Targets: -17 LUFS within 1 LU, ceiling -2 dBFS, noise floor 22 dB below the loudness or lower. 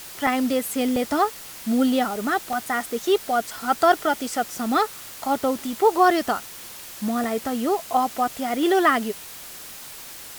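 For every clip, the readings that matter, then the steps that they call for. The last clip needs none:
dropouts 4; longest dropout 2.1 ms; noise floor -40 dBFS; noise floor target -45 dBFS; loudness -23.0 LUFS; peak level -5.5 dBFS; loudness target -17.0 LUFS
-> interpolate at 0.27/0.96/2.53/7.24 s, 2.1 ms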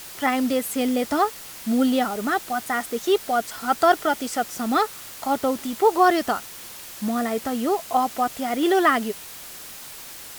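dropouts 0; noise floor -40 dBFS; noise floor target -45 dBFS
-> noise print and reduce 6 dB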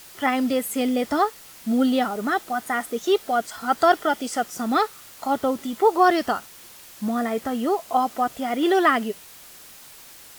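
noise floor -46 dBFS; loudness -23.0 LUFS; peak level -5.5 dBFS; loudness target -17.0 LUFS
-> trim +6 dB; peak limiter -2 dBFS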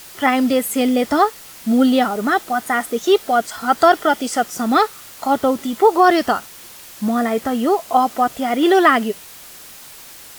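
loudness -17.5 LUFS; peak level -2.0 dBFS; noise floor -40 dBFS

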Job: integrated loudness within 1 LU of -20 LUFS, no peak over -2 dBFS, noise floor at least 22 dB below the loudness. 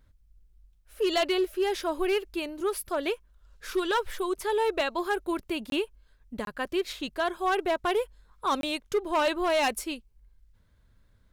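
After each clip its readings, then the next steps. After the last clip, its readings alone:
clipped samples 1.3%; clipping level -20.0 dBFS; dropouts 3; longest dropout 22 ms; loudness -29.0 LUFS; peak level -20.0 dBFS; loudness target -20.0 LUFS
-> clip repair -20 dBFS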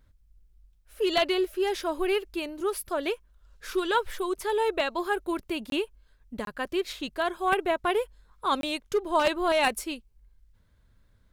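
clipped samples 0.0%; dropouts 3; longest dropout 22 ms
-> interpolate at 5.70/6.45/8.61 s, 22 ms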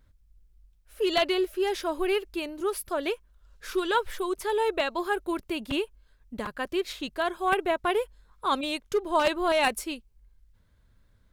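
dropouts 0; loudness -28.5 LUFS; peak level -11.0 dBFS; loudness target -20.0 LUFS
-> trim +8.5 dB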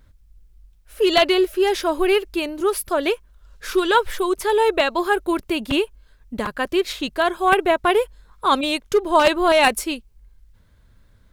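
loudness -20.0 LUFS; peak level -2.5 dBFS; noise floor -55 dBFS

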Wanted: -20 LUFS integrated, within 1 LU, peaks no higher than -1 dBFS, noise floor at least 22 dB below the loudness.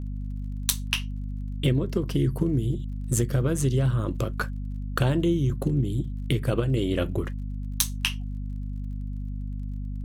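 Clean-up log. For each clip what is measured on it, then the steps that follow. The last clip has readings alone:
tick rate 33 per s; hum 50 Hz; highest harmonic 250 Hz; hum level -29 dBFS; loudness -27.5 LUFS; peak level -6.0 dBFS; loudness target -20.0 LUFS
-> de-click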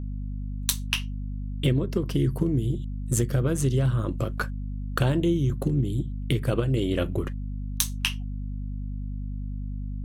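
tick rate 0.20 per s; hum 50 Hz; highest harmonic 250 Hz; hum level -29 dBFS
-> hum notches 50/100/150/200/250 Hz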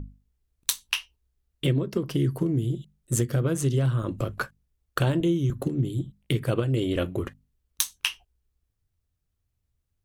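hum not found; loudness -27.5 LUFS; peak level -6.5 dBFS; loudness target -20.0 LUFS
-> trim +7.5 dB; peak limiter -1 dBFS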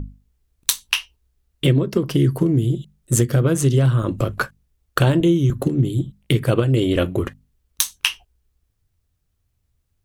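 loudness -20.0 LUFS; peak level -1.0 dBFS; noise floor -70 dBFS

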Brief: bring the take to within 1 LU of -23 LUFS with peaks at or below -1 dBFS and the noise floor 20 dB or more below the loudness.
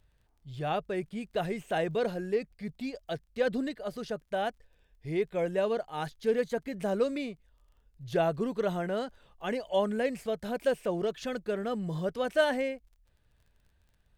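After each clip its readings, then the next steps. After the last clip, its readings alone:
tick rate 17 per s; loudness -32.0 LUFS; peak level -14.0 dBFS; loudness target -23.0 LUFS
-> de-click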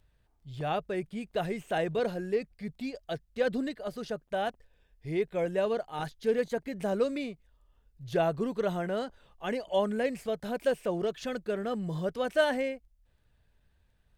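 tick rate 0.071 per s; loudness -32.0 LUFS; peak level -14.0 dBFS; loudness target -23.0 LUFS
-> trim +9 dB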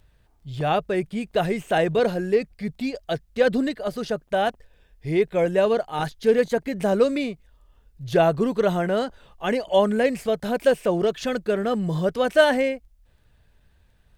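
loudness -23.0 LUFS; peak level -5.0 dBFS; noise floor -60 dBFS

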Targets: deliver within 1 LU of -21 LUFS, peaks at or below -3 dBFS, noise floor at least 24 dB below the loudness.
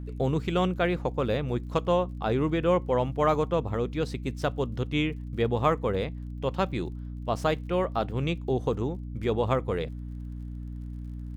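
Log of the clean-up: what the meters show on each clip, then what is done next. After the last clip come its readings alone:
tick rate 41 per s; hum 60 Hz; highest harmonic 300 Hz; hum level -34 dBFS; loudness -28.5 LUFS; peak level -10.5 dBFS; loudness target -21.0 LUFS
-> de-click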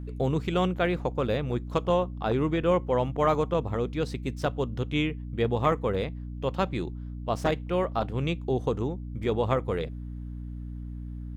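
tick rate 0.62 per s; hum 60 Hz; highest harmonic 300 Hz; hum level -34 dBFS
-> hum notches 60/120/180/240/300 Hz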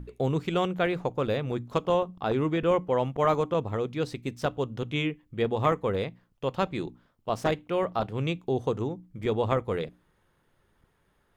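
hum not found; loudness -29.0 LUFS; peak level -11.5 dBFS; loudness target -21.0 LUFS
-> trim +8 dB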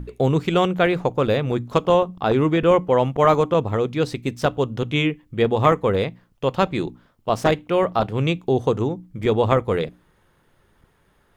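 loudness -21.0 LUFS; peak level -3.5 dBFS; noise floor -62 dBFS

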